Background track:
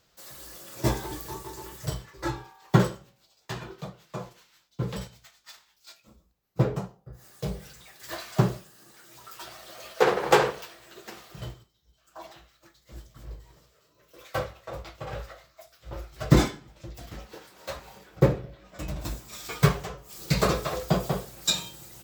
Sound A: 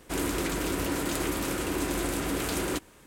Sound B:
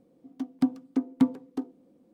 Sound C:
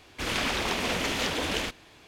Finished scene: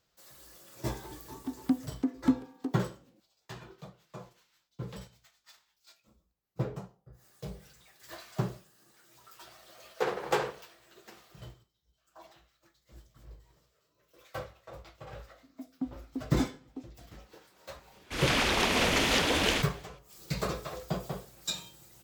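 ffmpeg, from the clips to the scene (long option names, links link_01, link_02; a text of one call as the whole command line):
ffmpeg -i bed.wav -i cue0.wav -i cue1.wav -i cue2.wav -filter_complex "[2:a]asplit=2[link_01][link_02];[0:a]volume=-9.5dB[link_03];[link_02]lowpass=1100[link_04];[3:a]dynaudnorm=framelen=110:gausssize=5:maxgain=11.5dB[link_05];[link_01]atrim=end=2.13,asetpts=PTS-STARTPTS,volume=-3.5dB,afade=type=in:duration=0.004:curve=hsin,afade=type=out:start_time=2.126:duration=0.004:curve=hsin,adelay=1070[link_06];[link_04]atrim=end=2.13,asetpts=PTS-STARTPTS,volume=-11dB,afade=type=in:duration=0.004:curve=hsin,afade=type=out:start_time=2.126:duration=0.004:curve=hsin,adelay=15190[link_07];[link_05]atrim=end=2.07,asetpts=PTS-STARTPTS,volume=-8.5dB,afade=type=in:duration=0.004:curve=hsin,afade=type=out:start_time=2.066:duration=0.004:curve=hsin,adelay=17920[link_08];[link_03][link_06][link_07][link_08]amix=inputs=4:normalize=0" out.wav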